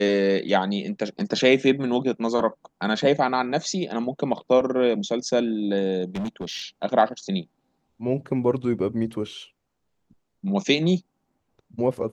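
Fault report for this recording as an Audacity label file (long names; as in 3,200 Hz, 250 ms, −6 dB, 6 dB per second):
6.150000	6.660000	clipping −25.5 dBFS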